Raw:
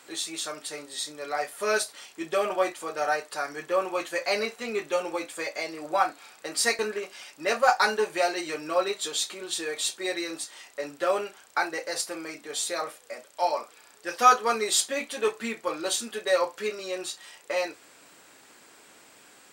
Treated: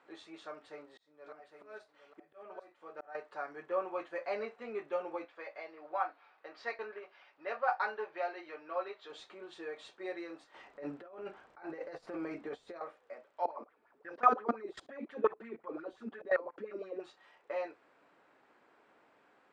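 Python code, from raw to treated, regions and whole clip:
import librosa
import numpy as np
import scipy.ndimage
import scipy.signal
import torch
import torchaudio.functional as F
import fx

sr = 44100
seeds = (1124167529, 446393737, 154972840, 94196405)

y = fx.chain(x, sr, fx.auto_swell(attack_ms=633.0),
    fx.echo_single(ms=810, db=-9.5), at=(0.45, 3.15))
y = fx.chain(y, sr, fx.lowpass(hz=5300.0, slope=24),
    fx.peak_eq(hz=140.0, db=-13.0, octaves=2.7), at=(5.25, 9.1))
y = fx.chain(y, sr, fx.over_compress(threshold_db=-38.0, ratio=-1.0),
    fx.low_shelf(hz=310.0, db=11.5), at=(10.54, 12.81))
y = fx.chain(y, sr, fx.level_steps(step_db=22),
    fx.low_shelf(hz=360.0, db=11.0),
    fx.bell_lfo(hz=5.7, low_hz=240.0, high_hz=2000.0, db=16), at=(13.45, 17.0))
y = scipy.signal.sosfilt(scipy.signal.bessel(2, 1100.0, 'lowpass', norm='mag', fs=sr, output='sos'), y)
y = fx.low_shelf(y, sr, hz=320.0, db=-10.0)
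y = y * 10.0 ** (-5.0 / 20.0)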